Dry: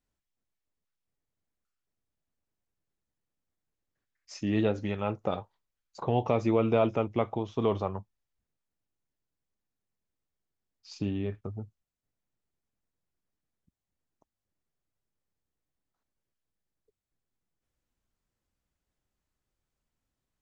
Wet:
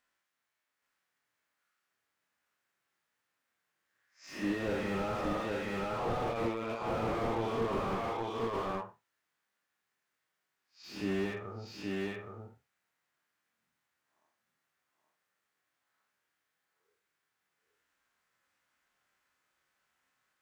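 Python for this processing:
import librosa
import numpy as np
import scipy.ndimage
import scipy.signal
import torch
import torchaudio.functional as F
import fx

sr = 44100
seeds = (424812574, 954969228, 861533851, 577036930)

y = fx.spec_blur(x, sr, span_ms=153.0)
y = fx.highpass(y, sr, hz=560.0, slope=6)
y = fx.peak_eq(y, sr, hz=1600.0, db=12.0, octaves=1.8)
y = fx.hpss(y, sr, part='percussive', gain_db=-15)
y = fx.dynamic_eq(y, sr, hz=3500.0, q=0.91, threshold_db=-52.0, ratio=4.0, max_db=6)
y = fx.over_compress(y, sr, threshold_db=-35.0, ratio=-0.5)
y = fx.doubler(y, sr, ms=26.0, db=-6.0)
y = y + 10.0 ** (-3.5 / 20.0) * np.pad(y, (int(821 * sr / 1000.0), 0))[:len(y)]
y = fx.slew_limit(y, sr, full_power_hz=9.1)
y = y * librosa.db_to_amplitude(6.0)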